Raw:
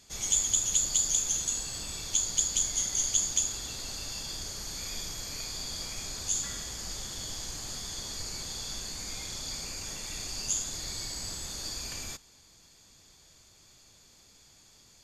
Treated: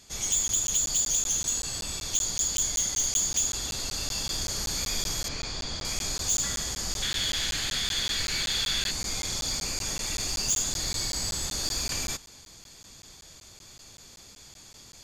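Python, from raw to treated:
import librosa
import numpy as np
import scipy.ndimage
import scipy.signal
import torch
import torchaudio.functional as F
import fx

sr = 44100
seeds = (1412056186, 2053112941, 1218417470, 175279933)

p1 = fx.band_shelf(x, sr, hz=2400.0, db=11.0, octaves=1.7, at=(7.02, 8.91))
p2 = fx.rider(p1, sr, range_db=10, speed_s=2.0)
p3 = p1 + (p2 * librosa.db_to_amplitude(-1.0))
p4 = 10.0 ** (-19.5 / 20.0) * np.tanh(p3 / 10.0 ** (-19.5 / 20.0))
p5 = fx.air_absorb(p4, sr, metres=110.0, at=(5.28, 5.85))
y = fx.buffer_crackle(p5, sr, first_s=0.48, period_s=0.19, block=512, kind='zero')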